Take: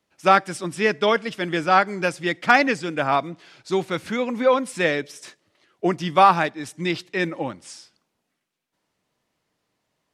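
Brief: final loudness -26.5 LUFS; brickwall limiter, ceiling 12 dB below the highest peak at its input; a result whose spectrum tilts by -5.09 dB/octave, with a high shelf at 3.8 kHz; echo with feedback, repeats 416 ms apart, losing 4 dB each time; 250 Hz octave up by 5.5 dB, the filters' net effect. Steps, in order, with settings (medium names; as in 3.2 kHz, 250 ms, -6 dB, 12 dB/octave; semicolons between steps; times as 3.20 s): peaking EQ 250 Hz +7.5 dB; treble shelf 3.8 kHz -6.5 dB; peak limiter -13.5 dBFS; feedback delay 416 ms, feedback 63%, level -4 dB; trim -3 dB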